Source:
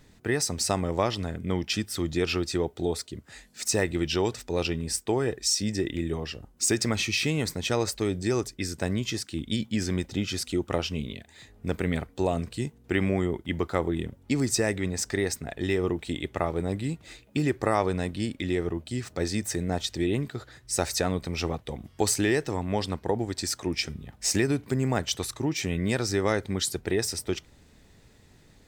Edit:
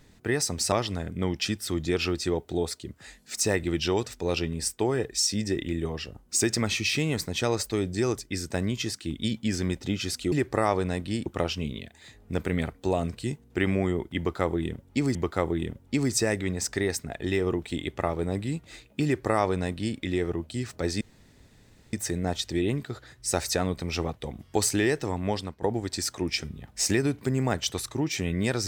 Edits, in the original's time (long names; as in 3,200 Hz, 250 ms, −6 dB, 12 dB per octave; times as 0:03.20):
0:00.72–0:01.00: remove
0:13.52–0:14.49: repeat, 2 plays
0:17.41–0:18.35: duplicate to 0:10.60
0:19.38: splice in room tone 0.92 s
0:22.74–0:23.07: fade out, to −12.5 dB